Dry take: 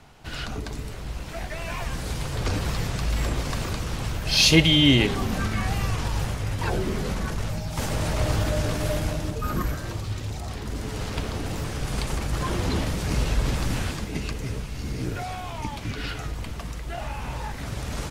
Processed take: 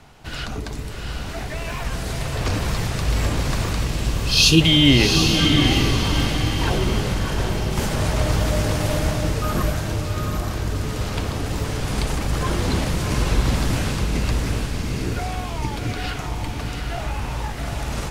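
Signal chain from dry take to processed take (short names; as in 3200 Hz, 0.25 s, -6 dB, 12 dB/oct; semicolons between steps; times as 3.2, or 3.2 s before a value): 1.2–1.85 hard clip -27 dBFS, distortion -35 dB; 3.87–4.61 brick-wall FIR band-stop 470–2400 Hz; diffused feedback echo 0.753 s, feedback 42%, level -3.5 dB; gain +3 dB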